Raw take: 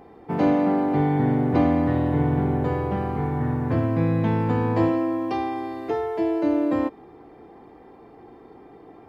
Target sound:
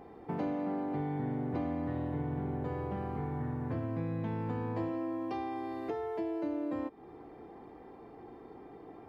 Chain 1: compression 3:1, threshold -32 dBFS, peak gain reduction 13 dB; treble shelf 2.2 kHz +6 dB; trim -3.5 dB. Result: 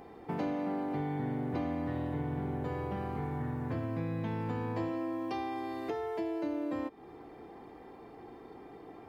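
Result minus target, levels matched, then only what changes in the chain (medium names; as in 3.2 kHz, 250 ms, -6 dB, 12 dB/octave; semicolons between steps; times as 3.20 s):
4 kHz band +5.5 dB
change: treble shelf 2.2 kHz -2.5 dB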